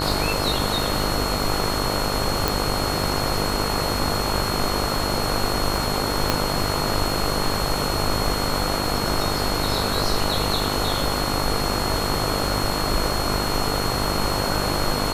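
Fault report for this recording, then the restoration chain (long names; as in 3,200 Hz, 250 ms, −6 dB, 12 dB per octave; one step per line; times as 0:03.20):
mains buzz 50 Hz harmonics 29 −27 dBFS
surface crackle 34 per second −28 dBFS
whistle 4,300 Hz −29 dBFS
0:02.48: click
0:06.30: click −3 dBFS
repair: click removal
notch filter 4,300 Hz, Q 30
hum removal 50 Hz, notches 29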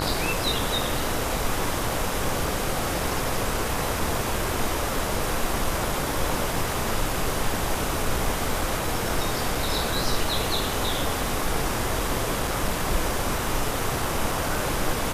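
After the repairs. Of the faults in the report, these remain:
0:02.48: click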